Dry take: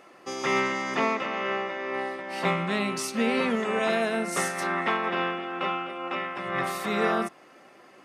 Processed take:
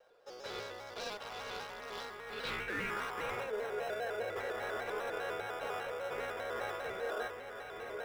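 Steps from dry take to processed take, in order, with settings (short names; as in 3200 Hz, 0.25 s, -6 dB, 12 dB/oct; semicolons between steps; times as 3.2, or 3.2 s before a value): band-pass sweep 590 Hz -> 2200 Hz, 0.76–3.29; diffused feedback echo 0.949 s, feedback 41%, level -10.5 dB; hard clip -32.5 dBFS, distortion -11 dB; band-pass sweep 5100 Hz -> 580 Hz, 2.2–3.56; in parallel at -6 dB: sample-and-hold 20×; on the sum: notch 2000 Hz, Q 23; small resonant body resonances 470/1500/3700 Hz, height 17 dB, ringing for 75 ms; reverse; compressor 6:1, threshold -46 dBFS, peak gain reduction 11 dB; reverse; shaped vibrato square 5 Hz, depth 100 cents; gain +11 dB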